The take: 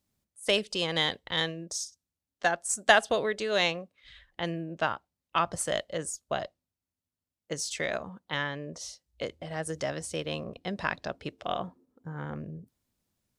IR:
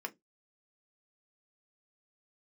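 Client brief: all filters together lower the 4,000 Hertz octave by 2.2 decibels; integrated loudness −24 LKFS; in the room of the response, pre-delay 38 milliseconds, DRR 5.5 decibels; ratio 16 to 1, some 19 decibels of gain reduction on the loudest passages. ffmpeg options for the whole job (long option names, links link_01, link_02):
-filter_complex "[0:a]equalizer=frequency=4000:width_type=o:gain=-3,acompressor=threshold=-34dB:ratio=16,asplit=2[link_01][link_02];[1:a]atrim=start_sample=2205,adelay=38[link_03];[link_02][link_03]afir=irnorm=-1:irlink=0,volume=-6.5dB[link_04];[link_01][link_04]amix=inputs=2:normalize=0,volume=15.5dB"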